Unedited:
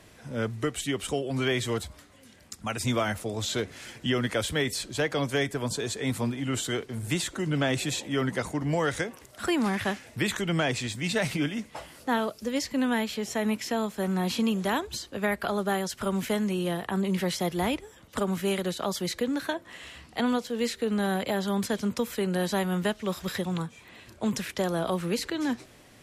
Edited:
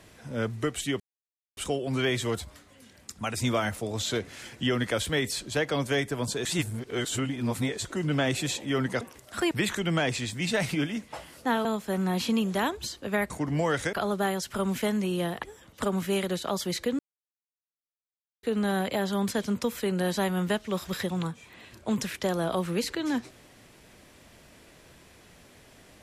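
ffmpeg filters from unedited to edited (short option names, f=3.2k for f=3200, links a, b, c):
-filter_complex "[0:a]asplit=12[a][b][c][d][e][f][g][h][i][j][k][l];[a]atrim=end=1,asetpts=PTS-STARTPTS,afade=t=out:st=0.996:d=0.004:c=hsin,apad=pad_dur=0.57[m];[b]atrim=start=1:end=5.882,asetpts=PTS-STARTPTS,afade=t=in:d=0.004:c=hsin[n];[c]atrim=start=5.878:end=7.282,asetpts=PTS-STARTPTS,areverse[o];[d]atrim=start=7.278:end=8.442[p];[e]atrim=start=9.068:end=9.572[q];[f]atrim=start=10.128:end=12.272[r];[g]atrim=start=13.748:end=15.402[s];[h]atrim=start=8.438:end=9.072[t];[i]atrim=start=15.398:end=16.902[u];[j]atrim=start=17.778:end=19.34,asetpts=PTS-STARTPTS,afade=t=out:st=1.558:d=0.004:c=hsin[v];[k]atrim=start=19.34:end=20.78,asetpts=PTS-STARTPTS,volume=0[w];[l]atrim=start=20.78,asetpts=PTS-STARTPTS,afade=t=in:d=0.004:c=hsin[x];[m][n]concat=n=2:v=0:a=1[y];[y][o]acrossfade=d=0.004:c1=hsin:c2=hsin[z];[z][p]acrossfade=d=0.004:c1=hsin:c2=hsin[aa];[aa][q]acrossfade=d=0.004:c1=hsin:c2=hsin[ab];[ab][r]acrossfade=d=0.004:c1=hsin:c2=hsin[ac];[ac][s]acrossfade=d=0.004:c1=hsin:c2=hsin[ad];[ad][t]acrossfade=d=0.004:c1=hsin:c2=hsin[ae];[ae][u]acrossfade=d=0.004:c1=hsin:c2=hsin[af];[v][w][x]concat=n=3:v=0:a=1[ag];[af][ag]acrossfade=d=0.004:c1=hsin:c2=hsin"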